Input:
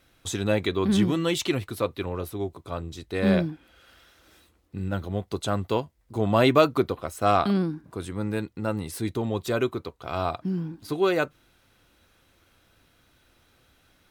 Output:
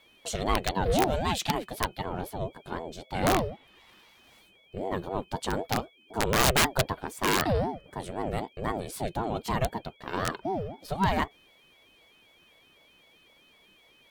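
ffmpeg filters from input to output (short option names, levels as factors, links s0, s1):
-af "aeval=exprs='(mod(4.47*val(0)+1,2)-1)/4.47':c=same,aeval=exprs='val(0)+0.00158*sin(2*PI*2800*n/s)':c=same,aeval=exprs='val(0)*sin(2*PI*420*n/s+420*0.4/3.9*sin(2*PI*3.9*n/s))':c=same"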